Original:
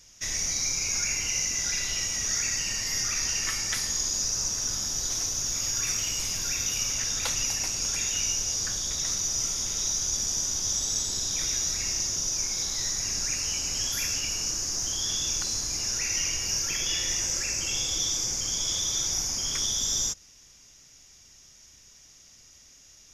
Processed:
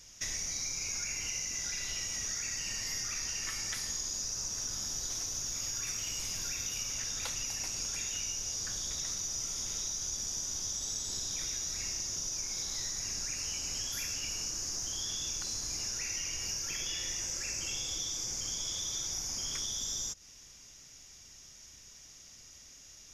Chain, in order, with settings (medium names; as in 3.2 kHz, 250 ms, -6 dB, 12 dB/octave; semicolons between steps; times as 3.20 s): compression, threshold -34 dBFS, peak gain reduction 10 dB